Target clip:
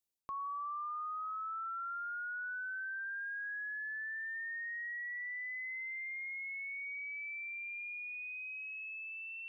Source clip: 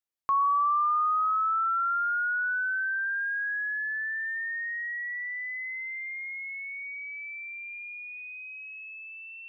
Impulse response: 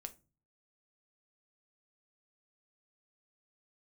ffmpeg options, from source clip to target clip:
-af "equalizer=f=1400:w=0.72:g=-12,areverse,acompressor=threshold=0.00631:ratio=6,areverse,volume=1.68"

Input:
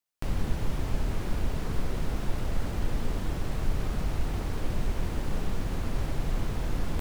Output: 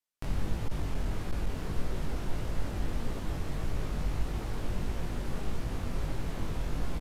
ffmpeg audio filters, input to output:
-filter_complex "[0:a]flanger=delay=17.5:depth=4.6:speed=1.6,asettb=1/sr,asplit=3[s0][s1][s2];[s0]atrim=end=0.614[s3];[s1]atrim=start=0.61:end=1.62,asetpts=PTS-STARTPTS,afade=t=in:d=0.004:c=qsin,afade=t=out:st=1.006:d=0.004:c=qsin,volume=14.1,asoftclip=hard,volume=0.0708[s4];[s2]atrim=start=1.616[s5];[s3][s4]acrossfade=d=0.004:c1=hsin:c2=qsin[s6];[s6][s5]acrossfade=d=0.004:c1=qsin:c2=hsin,aresample=32000,aresample=44100"

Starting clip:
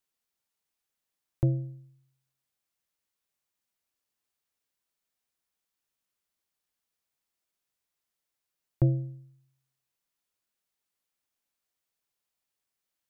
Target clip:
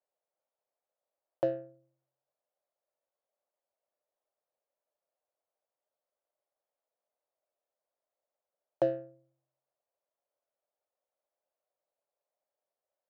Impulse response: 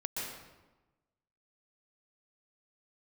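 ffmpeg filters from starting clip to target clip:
-af "highpass=f=590:t=q:w=4.9,adynamicsmooth=sensitivity=7.5:basefreq=930,volume=1.33"

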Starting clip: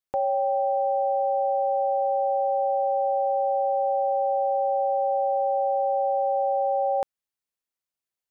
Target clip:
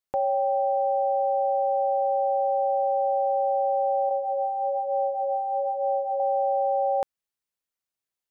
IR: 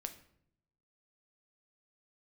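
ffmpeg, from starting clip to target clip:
-filter_complex "[0:a]asettb=1/sr,asplit=3[s0][s1][s2];[s0]atrim=end=4.094[s3];[s1]atrim=start=4.09:end=6.2,asetpts=PTS-STARTPTS,afade=t=in:d=0.004:c=qsin,afade=t=out:st=2.106:d=0.004:c=qsin,flanger=delay=18:depth=2.7:speed=1.1[s4];[s2]atrim=start=6.196[s5];[s3][s4]acrossfade=d=0.004:c1=hsin:c2=qsin[s6];[s6][s5]acrossfade=d=0.004:c1=qsin:c2=hsin"

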